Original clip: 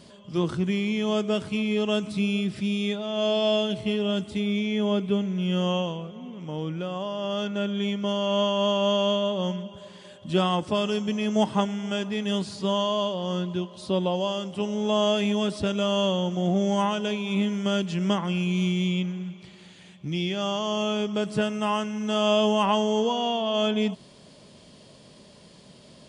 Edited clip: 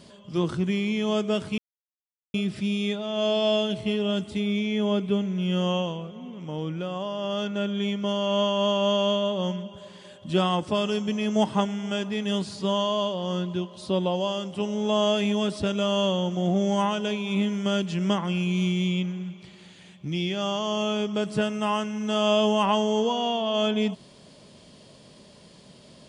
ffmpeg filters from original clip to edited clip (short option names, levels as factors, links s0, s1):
-filter_complex "[0:a]asplit=3[s0][s1][s2];[s0]atrim=end=1.58,asetpts=PTS-STARTPTS,afade=t=out:st=1.576:d=0.004:c=hsin[s3];[s1]atrim=start=1.58:end=2.34,asetpts=PTS-STARTPTS,volume=0[s4];[s2]atrim=start=2.34,asetpts=PTS-STARTPTS,afade=t=in:d=0.004:c=hsin[s5];[s3][s4][s5]concat=n=3:v=0:a=1"